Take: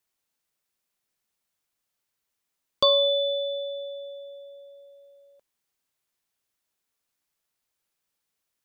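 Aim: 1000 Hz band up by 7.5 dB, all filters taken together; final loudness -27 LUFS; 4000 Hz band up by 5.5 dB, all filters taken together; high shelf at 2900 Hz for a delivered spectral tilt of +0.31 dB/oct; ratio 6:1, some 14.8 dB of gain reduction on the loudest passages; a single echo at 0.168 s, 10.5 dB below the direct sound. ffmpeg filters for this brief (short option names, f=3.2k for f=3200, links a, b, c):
-af "equalizer=f=1k:t=o:g=8,highshelf=f=2.9k:g=-3,equalizer=f=4k:t=o:g=8,acompressor=threshold=-27dB:ratio=6,aecho=1:1:168:0.299,volume=3.5dB"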